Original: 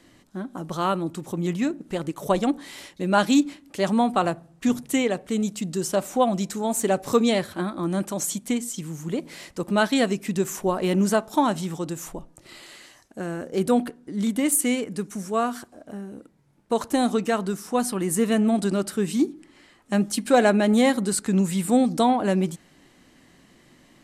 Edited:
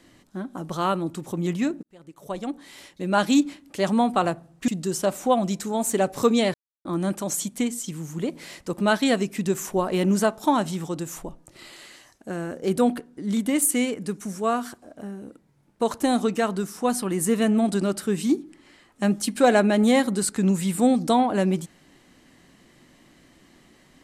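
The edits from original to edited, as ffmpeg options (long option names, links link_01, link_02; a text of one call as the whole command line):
ffmpeg -i in.wav -filter_complex "[0:a]asplit=5[link_01][link_02][link_03][link_04][link_05];[link_01]atrim=end=1.83,asetpts=PTS-STARTPTS,afade=type=out:start_time=1.826:duration=0.004:curve=hsin[link_06];[link_02]atrim=start=1.83:end=4.682,asetpts=PTS-STARTPTS,afade=type=in:duration=1.59[link_07];[link_03]atrim=start=5.578:end=7.44,asetpts=PTS-STARTPTS,afade=type=out:start_time=1.858:duration=0.004:curve=hsin[link_08];[link_04]atrim=start=7.44:end=7.75,asetpts=PTS-STARTPTS,volume=0[link_09];[link_05]atrim=start=7.75,asetpts=PTS-STARTPTS,afade=type=in:duration=0.004:curve=hsin[link_10];[link_06][link_07]concat=n=2:v=0:a=1[link_11];[link_08][link_09][link_10]concat=n=3:v=0:a=1[link_12];[link_11][link_12]acrossfade=duration=0.004:curve1=hsin:curve2=hsin" out.wav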